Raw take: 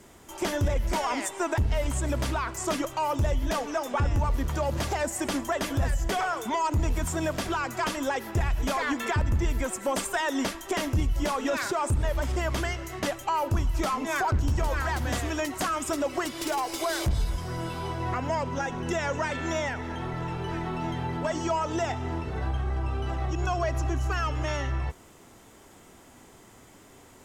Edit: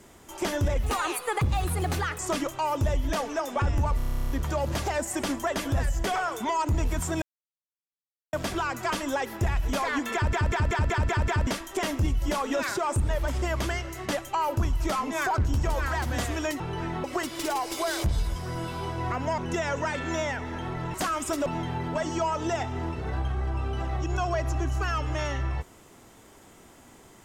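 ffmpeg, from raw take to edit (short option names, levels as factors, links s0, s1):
-filter_complex "[0:a]asplit=27[s0][s1][s2][s3][s4][s5][s6][s7][s8][s9][s10][s11][s12][s13][s14][s15][s16][s17][s18][s19][s20][s21][s22][s23][s24][s25][s26];[s0]atrim=end=0.834[s27];[s1]atrim=start=0.83:end=2.57,asetpts=PTS-STARTPTS,asetrate=56448,aresample=44100,atrim=end_sample=59948,asetpts=PTS-STARTPTS[s28];[s2]atrim=start=2.566:end=4.382[s29];[s3]atrim=start=4.348:end=4.382[s30];[s4]atrim=start=4.348:end=4.382[s31];[s5]atrim=start=4.348:end=4.382[s32];[s6]atrim=start=4.348:end=4.382[s33];[s7]atrim=start=4.348:end=4.382[s34];[s8]atrim=start=4.348:end=4.382[s35];[s9]atrim=start=4.348:end=4.382[s36];[s10]atrim=start=4.348:end=4.382[s37];[s11]atrim=start=4.348:end=4.382[s38];[s12]atrim=start=4.348:end=4.382[s39];[s13]atrim=start=4.348:end=7.27,asetpts=PTS-STARTPTS,afade=t=out:st=2.918:d=0.004:c=hsin,apad=pad_dur=1.11[s40];[s14]atrim=start=7.27:end=9.272,asetpts=PTS-STARTPTS,afade=t=in:d=0.004:c=hsin[s41];[s15]atrim=start=9.078:end=9.272[s42];[s16]atrim=start=9.078:end=9.272[s43];[s17]atrim=start=9.078:end=9.272[s44];[s18]atrim=start=9.078:end=9.272[s45];[s19]atrim=start=9.078:end=9.272[s46];[s20]atrim=start=9.078:end=9.272[s47];[s21]atrim=start=10.408:end=15.542[s48];[s22]atrim=start=20.308:end=20.752[s49];[s23]atrim=start=16.058:end=18.402[s50];[s24]atrim=start=18.748:end=20.312[s51];[s25]atrim=start=15.538:end=16.062[s52];[s26]atrim=start=20.748[s53];[s27][s28]acrossfade=d=0.004:c1=hsin:c2=hsin[s54];[s54][s29]acrossfade=d=0.004:c1=hsin:c2=hsin[s55];[s55][s30]acrossfade=d=0.004:c1=hsin:c2=hsin[s56];[s56][s31]acrossfade=d=0.004:c1=hsin:c2=hsin[s57];[s57][s32]acrossfade=d=0.004:c1=hsin:c2=hsin[s58];[s58][s33]acrossfade=d=0.004:c1=hsin:c2=hsin[s59];[s59][s34]acrossfade=d=0.004:c1=hsin:c2=hsin[s60];[s60][s35]acrossfade=d=0.004:c1=hsin:c2=hsin[s61];[s61][s36]acrossfade=d=0.004:c1=hsin:c2=hsin[s62];[s62][s37]acrossfade=d=0.004:c1=hsin:c2=hsin[s63];[s63][s38]acrossfade=d=0.004:c1=hsin:c2=hsin[s64];[s64][s39]acrossfade=d=0.004:c1=hsin:c2=hsin[s65];[s40][s41]concat=n=2:v=0:a=1[s66];[s65][s66]acrossfade=d=0.004:c1=hsin:c2=hsin[s67];[s67][s42]acrossfade=d=0.004:c1=hsin:c2=hsin[s68];[s68][s43]acrossfade=d=0.004:c1=hsin:c2=hsin[s69];[s69][s44]acrossfade=d=0.004:c1=hsin:c2=hsin[s70];[s70][s45]acrossfade=d=0.004:c1=hsin:c2=hsin[s71];[s71][s46]acrossfade=d=0.004:c1=hsin:c2=hsin[s72];[s72][s47]acrossfade=d=0.004:c1=hsin:c2=hsin[s73];[s73][s48]acrossfade=d=0.004:c1=hsin:c2=hsin[s74];[s74][s49]acrossfade=d=0.004:c1=hsin:c2=hsin[s75];[s75][s50]acrossfade=d=0.004:c1=hsin:c2=hsin[s76];[s76][s51]acrossfade=d=0.004:c1=hsin:c2=hsin[s77];[s77][s52]acrossfade=d=0.004:c1=hsin:c2=hsin[s78];[s78][s53]acrossfade=d=0.004:c1=hsin:c2=hsin"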